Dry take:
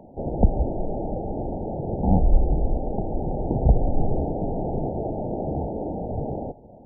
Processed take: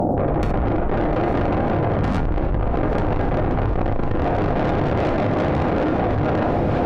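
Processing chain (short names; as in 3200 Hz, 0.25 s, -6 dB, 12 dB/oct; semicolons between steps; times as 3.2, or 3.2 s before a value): AGC gain up to 5.5 dB; tube stage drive 30 dB, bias 0.5; step gate ".xx.x.xxx" 168 bpm -12 dB; diffused feedback echo 0.971 s, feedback 44%, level -15 dB; on a send at -6 dB: reverb, pre-delay 5 ms; on the sum: fast leveller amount 100%; gain +8 dB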